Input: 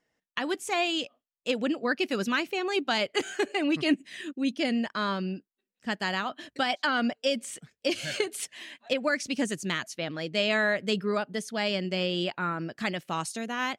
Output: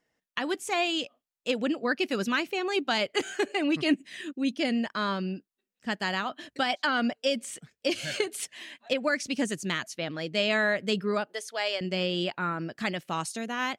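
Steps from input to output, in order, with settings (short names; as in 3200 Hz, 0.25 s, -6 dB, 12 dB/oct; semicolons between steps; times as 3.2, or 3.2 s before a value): 11.27–11.81 HPF 450 Hz 24 dB/oct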